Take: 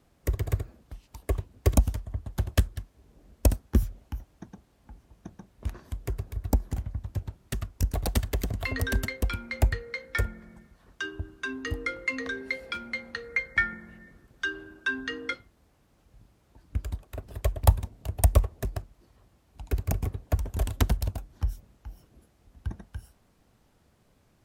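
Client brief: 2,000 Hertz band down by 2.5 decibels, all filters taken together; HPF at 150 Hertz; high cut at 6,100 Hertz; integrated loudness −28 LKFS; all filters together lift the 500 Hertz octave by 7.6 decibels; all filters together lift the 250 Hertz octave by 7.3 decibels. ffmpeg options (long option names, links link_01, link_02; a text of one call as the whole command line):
ffmpeg -i in.wav -af "highpass=150,lowpass=6100,equalizer=frequency=250:width_type=o:gain=7.5,equalizer=frequency=500:width_type=o:gain=7.5,equalizer=frequency=2000:width_type=o:gain=-3.5,volume=3.5dB" out.wav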